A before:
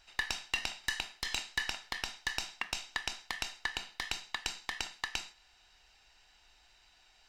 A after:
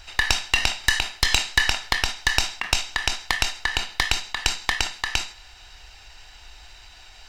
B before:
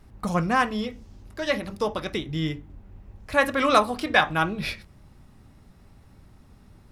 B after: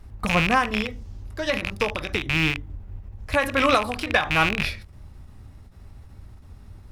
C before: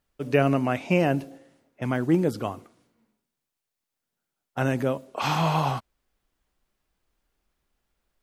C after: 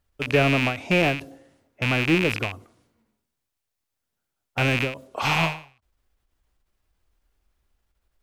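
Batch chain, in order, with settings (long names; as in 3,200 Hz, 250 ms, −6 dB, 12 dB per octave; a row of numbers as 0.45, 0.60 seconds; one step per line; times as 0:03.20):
loose part that buzzes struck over −33 dBFS, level −13 dBFS
low shelf with overshoot 120 Hz +6.5 dB, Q 1.5
every ending faded ahead of time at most 140 dB per second
loudness normalisation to −23 LKFS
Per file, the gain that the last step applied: +16.5, +2.5, +1.0 decibels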